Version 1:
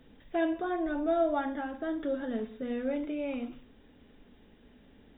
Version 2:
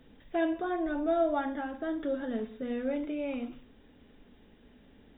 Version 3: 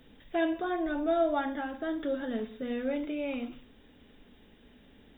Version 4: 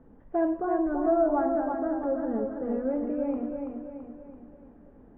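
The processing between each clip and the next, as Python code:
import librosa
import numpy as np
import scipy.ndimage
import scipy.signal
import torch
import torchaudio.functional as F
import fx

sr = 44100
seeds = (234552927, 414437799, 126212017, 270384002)

y1 = x
y2 = fx.high_shelf(y1, sr, hz=2700.0, db=8.0)
y3 = scipy.signal.sosfilt(scipy.signal.butter(4, 1200.0, 'lowpass', fs=sr, output='sos'), y2)
y3 = fx.echo_feedback(y3, sr, ms=333, feedback_pct=48, wet_db=-5)
y3 = F.gain(torch.from_numpy(y3), 3.0).numpy()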